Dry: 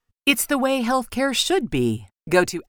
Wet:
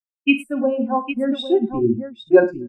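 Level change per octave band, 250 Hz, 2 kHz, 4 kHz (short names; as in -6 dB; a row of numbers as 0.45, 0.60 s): +3.5, -2.5, -8.0 dB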